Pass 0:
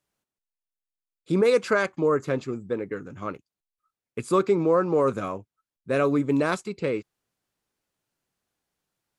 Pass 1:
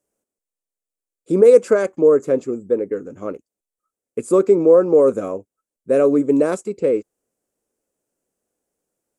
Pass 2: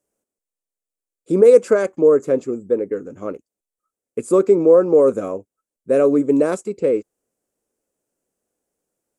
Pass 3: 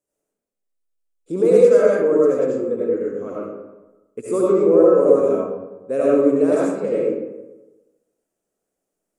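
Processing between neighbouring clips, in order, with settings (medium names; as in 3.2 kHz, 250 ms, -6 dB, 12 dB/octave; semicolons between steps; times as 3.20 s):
graphic EQ 125/250/500/1000/2000/4000/8000 Hz -6/+5/+11/-4/-3/-10/+9 dB
no audible change
algorithmic reverb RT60 1.1 s, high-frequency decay 0.5×, pre-delay 45 ms, DRR -6.5 dB; trim -7.5 dB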